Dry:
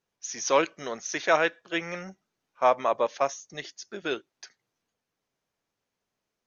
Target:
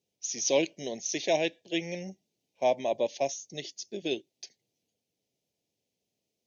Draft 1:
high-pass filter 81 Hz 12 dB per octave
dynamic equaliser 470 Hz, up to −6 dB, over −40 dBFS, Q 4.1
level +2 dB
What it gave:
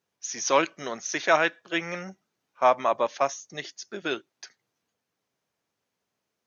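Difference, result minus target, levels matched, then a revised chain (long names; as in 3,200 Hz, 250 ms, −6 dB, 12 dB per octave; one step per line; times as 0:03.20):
1,000 Hz band +6.5 dB
high-pass filter 81 Hz 12 dB per octave
dynamic equaliser 470 Hz, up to −6 dB, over −40 dBFS, Q 4.1
Butterworth band-reject 1,300 Hz, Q 0.64
level +2 dB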